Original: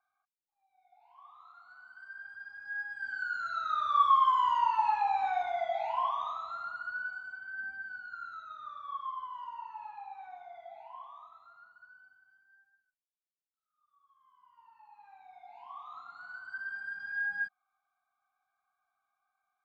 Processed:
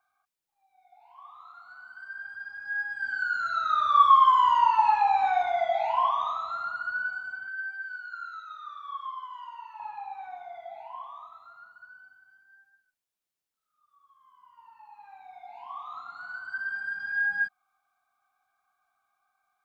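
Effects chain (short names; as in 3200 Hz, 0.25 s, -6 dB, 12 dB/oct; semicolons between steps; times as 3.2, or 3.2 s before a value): 7.48–9.8 HPF 1300 Hz 12 dB/oct; gain +6.5 dB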